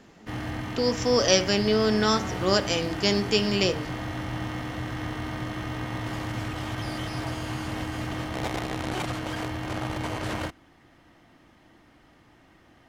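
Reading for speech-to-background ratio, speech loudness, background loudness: 8.5 dB, -24.0 LUFS, -32.5 LUFS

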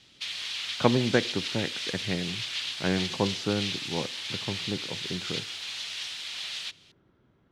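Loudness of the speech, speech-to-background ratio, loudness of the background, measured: -31.5 LUFS, 1.0 dB, -32.5 LUFS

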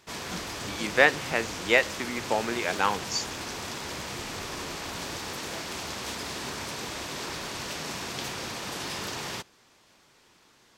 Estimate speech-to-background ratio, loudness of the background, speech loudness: 8.0 dB, -34.5 LUFS, -26.5 LUFS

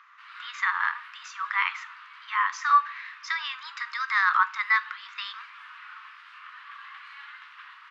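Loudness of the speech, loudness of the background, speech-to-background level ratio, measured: -26.0 LUFS, -45.5 LUFS, 19.5 dB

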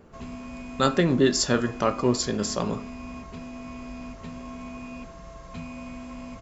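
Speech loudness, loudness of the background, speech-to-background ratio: -24.5 LUFS, -39.5 LUFS, 15.0 dB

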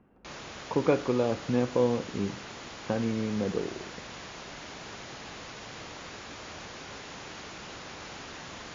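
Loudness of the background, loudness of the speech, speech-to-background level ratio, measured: -42.0 LUFS, -29.5 LUFS, 12.5 dB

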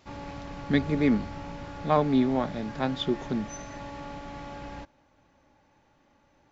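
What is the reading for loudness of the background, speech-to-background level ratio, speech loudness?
-40.5 LUFS, 13.5 dB, -27.0 LUFS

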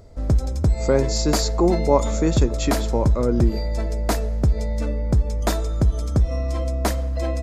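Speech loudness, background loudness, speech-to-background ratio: -23.0 LUFS, -23.5 LUFS, 0.5 dB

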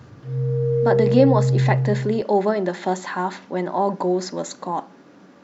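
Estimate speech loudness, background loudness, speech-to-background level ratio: -22.5 LUFS, -21.0 LUFS, -1.5 dB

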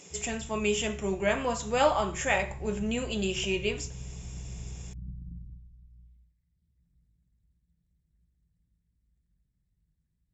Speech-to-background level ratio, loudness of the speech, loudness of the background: 14.0 dB, -29.5 LUFS, -43.5 LUFS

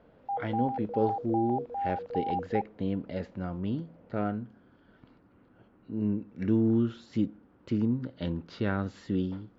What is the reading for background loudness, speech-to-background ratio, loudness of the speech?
-34.5 LUFS, 2.5 dB, -32.0 LUFS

